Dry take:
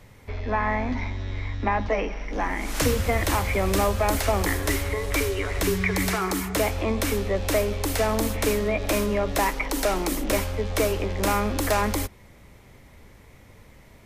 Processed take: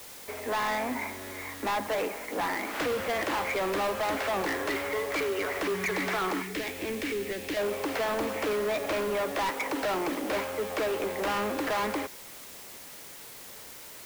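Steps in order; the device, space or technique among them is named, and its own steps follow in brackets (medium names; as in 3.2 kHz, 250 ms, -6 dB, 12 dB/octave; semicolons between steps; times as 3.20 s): aircraft radio (band-pass 350–2400 Hz; hard clipper -28.5 dBFS, distortion -7 dB; white noise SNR 15 dB); 6.42–7.57 s: high-order bell 870 Hz -11.5 dB; trim +2 dB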